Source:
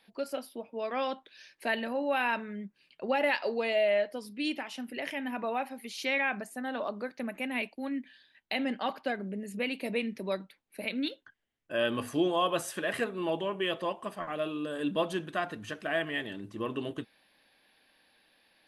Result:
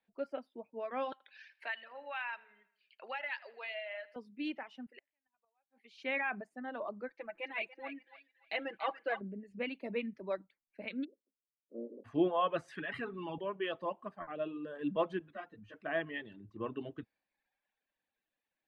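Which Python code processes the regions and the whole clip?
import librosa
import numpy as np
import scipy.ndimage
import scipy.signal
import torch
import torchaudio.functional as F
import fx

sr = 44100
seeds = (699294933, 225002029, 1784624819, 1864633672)

y = fx.chain(x, sr, fx.highpass(hz=1200.0, slope=12),
    fx.echo_feedback(ms=80, feedback_pct=50, wet_db=-11.0),
    fx.band_squash(depth_pct=70), at=(1.12, 4.16))
y = fx.chain(y, sr, fx.highpass(hz=780.0, slope=6),
    fx.gate_flip(shuts_db=-30.0, range_db=-30), at=(4.86, 5.96))
y = fx.chain(y, sr, fx.peak_eq(hz=180.0, db=-14.5, octaves=1.1),
    fx.comb(ms=6.0, depth=0.88),
    fx.echo_thinned(ms=287, feedback_pct=45, hz=690.0, wet_db=-7.5), at=(7.08, 9.21))
y = fx.spec_clip(y, sr, under_db=21, at=(11.03, 12.04), fade=0.02)
y = fx.cheby1_bandpass(y, sr, low_hz=210.0, high_hz=550.0, order=4, at=(11.03, 12.04), fade=0.02)
y = fx.chain(y, sr, fx.peak_eq(hz=580.0, db=-10.0, octaves=0.99),
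    fx.comb(ms=7.1, depth=0.37),
    fx.env_flatten(amount_pct=50), at=(12.68, 13.38))
y = fx.chain(y, sr, fx.dynamic_eq(hz=1200.0, q=1.0, threshold_db=-45.0, ratio=4.0, max_db=-6),
    fx.ensemble(), at=(15.19, 15.74))
y = fx.dereverb_blind(y, sr, rt60_s=1.1)
y = scipy.signal.sosfilt(scipy.signal.butter(2, 2300.0, 'lowpass', fs=sr, output='sos'), y)
y = fx.band_widen(y, sr, depth_pct=40)
y = F.gain(torch.from_numpy(y), -4.5).numpy()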